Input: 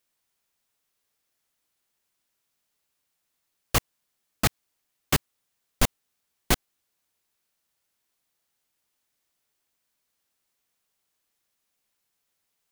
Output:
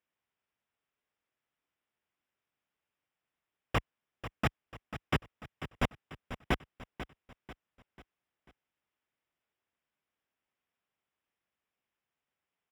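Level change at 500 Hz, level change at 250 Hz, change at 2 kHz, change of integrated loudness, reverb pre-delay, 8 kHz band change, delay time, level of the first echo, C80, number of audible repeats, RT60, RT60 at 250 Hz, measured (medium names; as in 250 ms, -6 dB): -4.5 dB, -4.5 dB, -5.0 dB, -10.0 dB, no reverb, -23.5 dB, 492 ms, -12.0 dB, no reverb, 4, no reverb, no reverb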